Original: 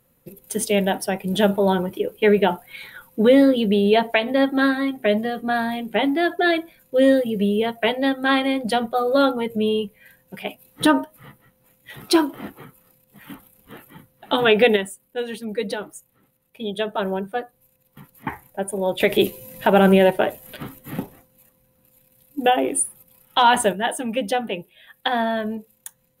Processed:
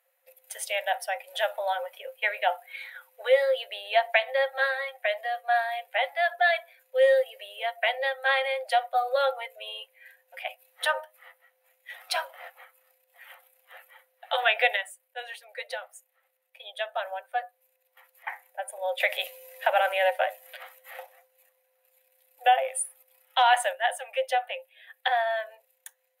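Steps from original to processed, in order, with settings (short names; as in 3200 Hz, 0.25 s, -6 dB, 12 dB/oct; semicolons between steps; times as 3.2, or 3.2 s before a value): rippled Chebyshev high-pass 510 Hz, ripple 9 dB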